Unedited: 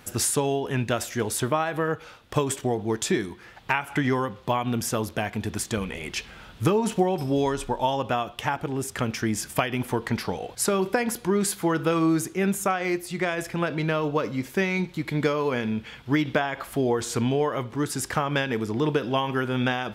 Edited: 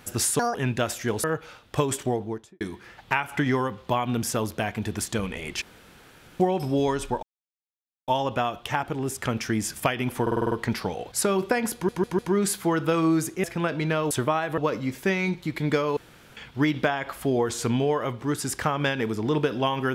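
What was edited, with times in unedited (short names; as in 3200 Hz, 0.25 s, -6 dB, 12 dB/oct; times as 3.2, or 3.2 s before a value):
0.39–0.66 speed 172%
1.35–1.82 move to 14.09
2.64–3.19 studio fade out
6.2–6.98 room tone
7.81 insert silence 0.85 s
9.95 stutter 0.05 s, 7 plays
11.17 stutter 0.15 s, 4 plays
12.42–13.42 cut
15.48–15.88 room tone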